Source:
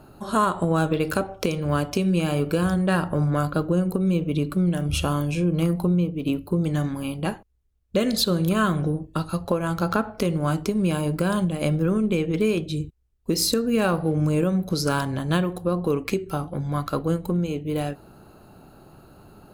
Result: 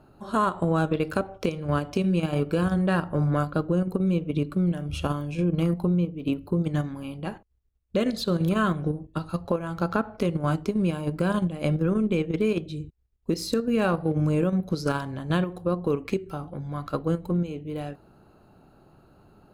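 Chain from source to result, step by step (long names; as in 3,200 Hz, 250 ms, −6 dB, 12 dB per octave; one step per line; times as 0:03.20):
low-pass filter 3,900 Hz 6 dB per octave
in parallel at +2 dB: output level in coarse steps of 23 dB
on the sum: level −7.5 dB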